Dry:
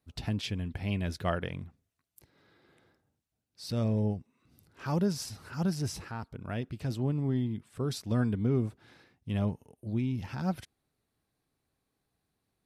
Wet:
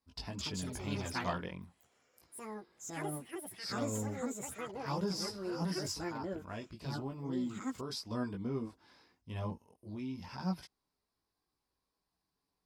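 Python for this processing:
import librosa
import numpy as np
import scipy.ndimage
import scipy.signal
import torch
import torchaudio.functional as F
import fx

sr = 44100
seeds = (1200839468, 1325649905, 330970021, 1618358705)

y = fx.chorus_voices(x, sr, voices=4, hz=0.25, base_ms=19, depth_ms=3.6, mix_pct=45)
y = fx.graphic_eq_31(y, sr, hz=(125, 1000, 5000), db=(-11, 11, 12))
y = fx.echo_pitch(y, sr, ms=265, semitones=6, count=2, db_per_echo=-3.0)
y = y * librosa.db_to_amplitude(-4.0)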